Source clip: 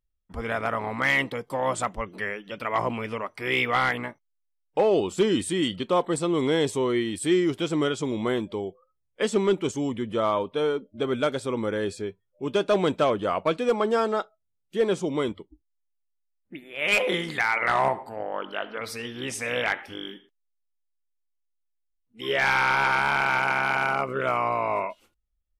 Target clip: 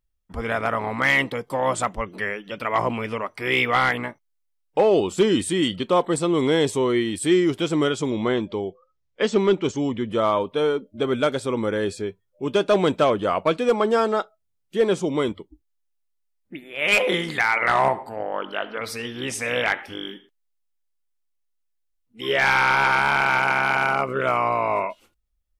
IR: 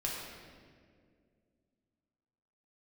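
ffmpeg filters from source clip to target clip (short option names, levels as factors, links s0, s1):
-filter_complex "[0:a]asettb=1/sr,asplit=3[s0][s1][s2];[s0]atrim=end=8.104[s3];[s1]atrim=start=8.1:end=10.11,asetpts=PTS-STARTPTS,afade=t=in:d=0.004:c=qsin,afade=t=out:st=2.006:d=0.004:c=qsin,lowpass=f=6500:w=0.5412,lowpass=f=6500:w=1.3066[s4];[s2]atrim=start=10.106[s5];[s3][s4]acrossfade=d=0.004:c1=hsin:c2=qsin[s6];[s6][s5]acrossfade=d=0.004:c1=qsin:c2=hsin,volume=1.5"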